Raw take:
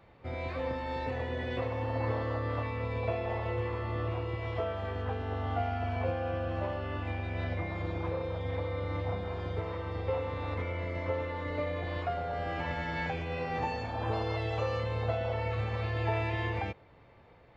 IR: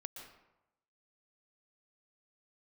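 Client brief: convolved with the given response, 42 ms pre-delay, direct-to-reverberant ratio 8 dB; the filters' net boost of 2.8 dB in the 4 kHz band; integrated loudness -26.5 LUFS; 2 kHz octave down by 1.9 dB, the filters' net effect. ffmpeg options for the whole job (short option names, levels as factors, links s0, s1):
-filter_complex "[0:a]equalizer=f=2000:t=o:g=-3.5,equalizer=f=4000:t=o:g=5,asplit=2[s0][s1];[1:a]atrim=start_sample=2205,adelay=42[s2];[s1][s2]afir=irnorm=-1:irlink=0,volume=0.596[s3];[s0][s3]amix=inputs=2:normalize=0,volume=2.37"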